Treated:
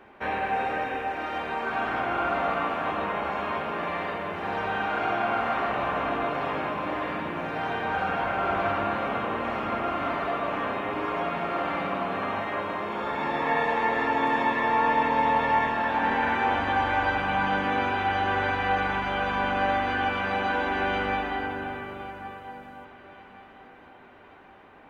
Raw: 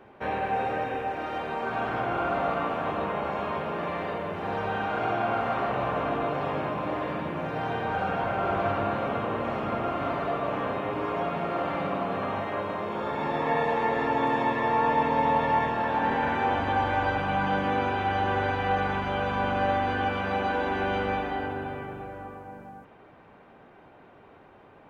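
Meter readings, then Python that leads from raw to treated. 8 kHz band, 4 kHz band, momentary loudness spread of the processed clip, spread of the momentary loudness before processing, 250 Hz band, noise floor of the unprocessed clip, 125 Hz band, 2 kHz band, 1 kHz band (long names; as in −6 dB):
can't be measured, +3.0 dB, 7 LU, 6 LU, −0.5 dB, −53 dBFS, −4.0 dB, +4.0 dB, +1.0 dB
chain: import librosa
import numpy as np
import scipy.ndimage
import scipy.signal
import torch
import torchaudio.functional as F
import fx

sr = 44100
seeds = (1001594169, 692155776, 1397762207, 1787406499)

y = fx.graphic_eq(x, sr, hz=(125, 500, 2000), db=(-9, -4, 3))
y = fx.echo_feedback(y, sr, ms=1123, feedback_pct=45, wet_db=-18)
y = y * 10.0 ** (2.0 / 20.0)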